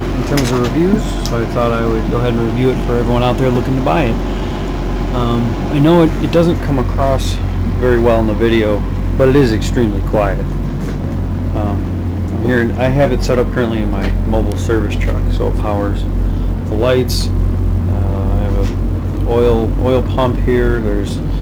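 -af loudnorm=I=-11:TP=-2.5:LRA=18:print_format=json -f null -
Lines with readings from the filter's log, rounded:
"input_i" : "-15.2",
"input_tp" : "-2.5",
"input_lra" : "2.3",
"input_thresh" : "-25.2",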